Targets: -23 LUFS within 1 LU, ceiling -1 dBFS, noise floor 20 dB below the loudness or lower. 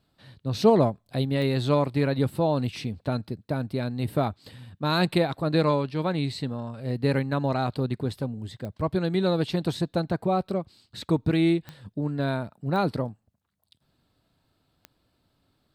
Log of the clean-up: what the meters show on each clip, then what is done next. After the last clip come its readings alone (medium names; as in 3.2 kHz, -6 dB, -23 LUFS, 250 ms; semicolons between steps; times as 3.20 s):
clicks found 5; loudness -26.5 LUFS; peak level -7.0 dBFS; loudness target -23.0 LUFS
-> de-click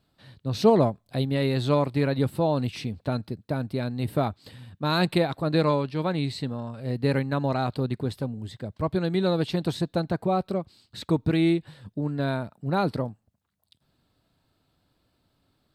clicks found 0; loudness -26.5 LUFS; peak level -7.0 dBFS; loudness target -23.0 LUFS
-> trim +3.5 dB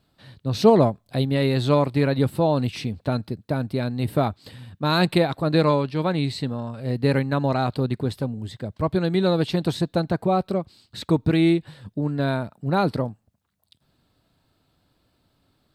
loudness -23.0 LUFS; peak level -3.5 dBFS; noise floor -70 dBFS